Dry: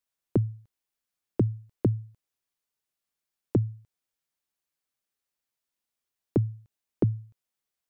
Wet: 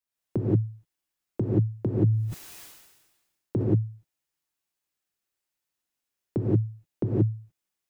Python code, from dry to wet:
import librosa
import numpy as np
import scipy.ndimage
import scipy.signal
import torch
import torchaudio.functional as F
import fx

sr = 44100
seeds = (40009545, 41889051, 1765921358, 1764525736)

y = fx.rev_gated(x, sr, seeds[0], gate_ms=200, shape='rising', drr_db=-5.5)
y = fx.sustainer(y, sr, db_per_s=47.0, at=(1.97, 3.7))
y = F.gain(torch.from_numpy(y), -4.5).numpy()